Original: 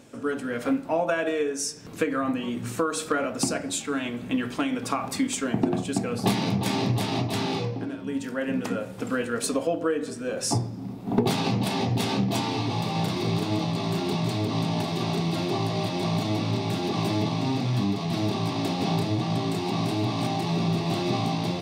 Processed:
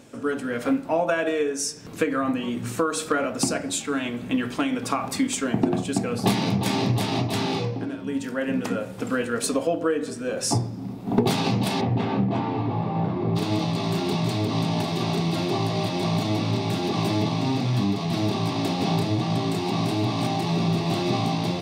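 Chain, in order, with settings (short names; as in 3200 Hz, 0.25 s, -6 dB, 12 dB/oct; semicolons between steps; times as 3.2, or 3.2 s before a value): 11.8–13.35 LPF 2100 Hz -> 1100 Hz 12 dB/oct; gain +2 dB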